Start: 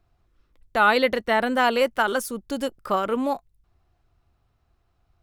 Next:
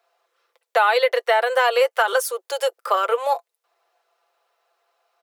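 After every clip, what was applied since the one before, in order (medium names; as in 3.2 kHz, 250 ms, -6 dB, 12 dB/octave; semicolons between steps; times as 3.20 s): comb 5.9 ms, depth 50%; compression 4:1, threshold -21 dBFS, peak gain reduction 8 dB; steep high-pass 420 Hz 72 dB/octave; trim +6.5 dB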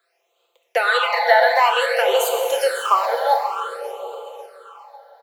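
feedback delay 545 ms, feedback 41%, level -14 dB; plate-style reverb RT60 3.5 s, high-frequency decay 0.75×, DRR 1.5 dB; phase shifter stages 8, 0.54 Hz, lowest notch 350–1700 Hz; trim +4.5 dB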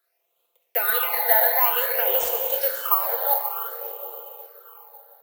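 FDN reverb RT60 3 s, high-frequency decay 0.8×, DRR 13 dB; careless resampling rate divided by 3×, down none, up zero stuff; trim -9 dB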